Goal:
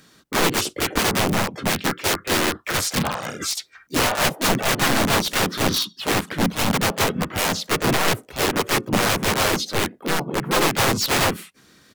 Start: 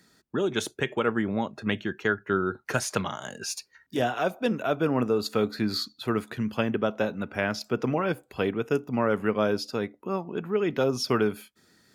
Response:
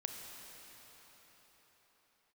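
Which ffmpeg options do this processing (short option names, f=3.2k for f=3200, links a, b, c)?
-filter_complex "[0:a]aeval=exprs='(mod(11.9*val(0)+1,2)-1)/11.9':c=same,asplit=4[a][b][c][d];[b]asetrate=33038,aresample=44100,atempo=1.33484,volume=-6dB[e];[c]asetrate=37084,aresample=44100,atempo=1.18921,volume=0dB[f];[d]asetrate=55563,aresample=44100,atempo=0.793701,volume=-3dB[g];[a][e][f][g]amix=inputs=4:normalize=0,volume=4dB"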